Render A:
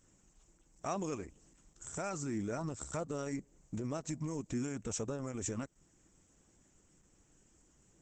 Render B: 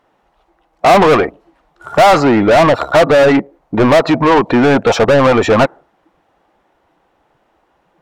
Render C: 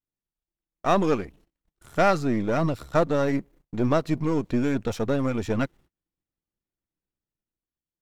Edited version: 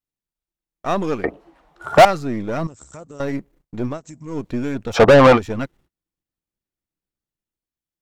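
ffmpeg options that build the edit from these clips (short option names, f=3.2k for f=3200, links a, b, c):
-filter_complex "[1:a]asplit=2[a][b];[0:a]asplit=2[c][d];[2:a]asplit=5[e][f][g][h][i];[e]atrim=end=1.242[j];[a]atrim=start=1.238:end=2.052[k];[f]atrim=start=2.048:end=2.672[l];[c]atrim=start=2.668:end=3.202[m];[g]atrim=start=3.198:end=4[n];[d]atrim=start=3.84:end=4.4[o];[h]atrim=start=4.24:end=4.99[p];[b]atrim=start=4.93:end=5.4[q];[i]atrim=start=5.34[r];[j][k]acrossfade=d=0.004:c1=hsin:c2=hsin[s];[s][l]acrossfade=d=0.004:c1=hsin:c2=hsin[t];[t][m]acrossfade=d=0.004:c1=hsin:c2=hsin[u];[u][n]acrossfade=d=0.004:c1=hsin:c2=hsin[v];[v][o]acrossfade=d=0.16:c1=tri:c2=tri[w];[w][p]acrossfade=d=0.16:c1=tri:c2=tri[x];[x][q]acrossfade=d=0.06:c1=tri:c2=tri[y];[y][r]acrossfade=d=0.06:c1=tri:c2=tri"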